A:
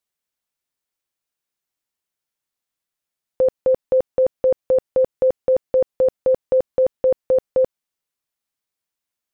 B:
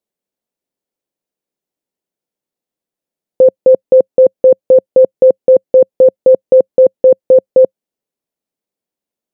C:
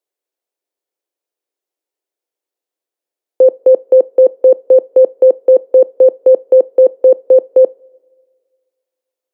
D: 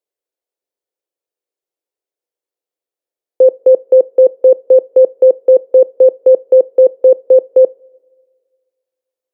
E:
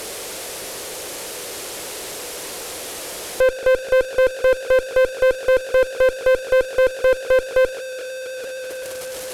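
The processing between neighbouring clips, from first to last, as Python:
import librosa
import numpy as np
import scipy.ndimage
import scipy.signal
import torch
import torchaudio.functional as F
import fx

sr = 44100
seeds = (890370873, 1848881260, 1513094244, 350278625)

y1 = fx.curve_eq(x, sr, hz=(100.0, 190.0, 530.0, 1200.0), db=(0, 11, 12, -2))
y1 = y1 * 10.0 ** (-2.0 / 20.0)
y2 = scipy.signal.sosfilt(scipy.signal.butter(6, 320.0, 'highpass', fs=sr, output='sos'), y1)
y2 = fx.rev_double_slope(y2, sr, seeds[0], early_s=0.25, late_s=1.9, knee_db=-21, drr_db=17.0)
y3 = fx.peak_eq(y2, sr, hz=490.0, db=5.0, octaves=0.59)
y3 = y3 * 10.0 ** (-4.5 / 20.0)
y4 = fx.delta_mod(y3, sr, bps=64000, step_db=-22.5)
y4 = fx.tube_stage(y4, sr, drive_db=12.0, bias=0.4)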